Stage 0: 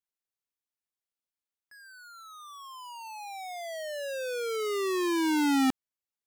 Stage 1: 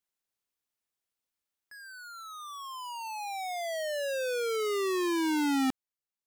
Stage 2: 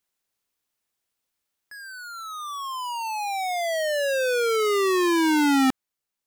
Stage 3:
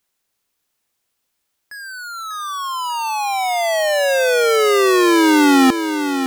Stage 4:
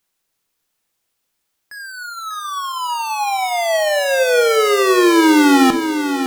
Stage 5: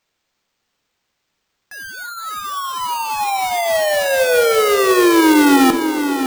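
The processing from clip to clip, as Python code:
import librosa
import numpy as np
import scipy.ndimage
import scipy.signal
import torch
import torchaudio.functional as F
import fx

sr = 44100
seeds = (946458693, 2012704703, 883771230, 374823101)

y1 = fx.rider(x, sr, range_db=4, speed_s=2.0)
y2 = fx.dynamic_eq(y1, sr, hz=1400.0, q=1.1, threshold_db=-44.0, ratio=4.0, max_db=3)
y2 = y2 * 10.0 ** (7.5 / 20.0)
y3 = fx.echo_feedback(y2, sr, ms=593, feedback_pct=44, wet_db=-8.5)
y3 = y3 * 10.0 ** (7.5 / 20.0)
y4 = fx.room_shoebox(y3, sr, seeds[0], volume_m3=420.0, walls='furnished', distance_m=0.63)
y5 = np.repeat(y4[::4], 4)[:len(y4)]
y5 = fx.echo_bbd(y5, sr, ms=277, stages=2048, feedback_pct=78, wet_db=-17.5)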